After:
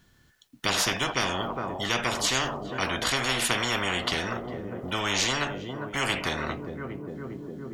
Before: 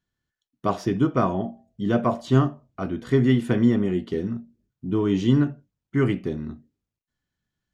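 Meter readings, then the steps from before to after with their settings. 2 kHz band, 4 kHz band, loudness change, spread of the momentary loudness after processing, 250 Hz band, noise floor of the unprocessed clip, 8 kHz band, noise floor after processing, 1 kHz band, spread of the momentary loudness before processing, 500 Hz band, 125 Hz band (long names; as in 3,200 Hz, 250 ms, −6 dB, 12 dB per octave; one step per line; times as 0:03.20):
+9.5 dB, +14.5 dB, −4.0 dB, 12 LU, −12.0 dB, below −85 dBFS, can't be measured, −61 dBFS, +1.0 dB, 12 LU, −6.0 dB, −11.5 dB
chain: on a send: tape delay 406 ms, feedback 70%, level −20.5 dB, low-pass 1,600 Hz
on the sum: every bin compressed towards the loudest bin 10 to 1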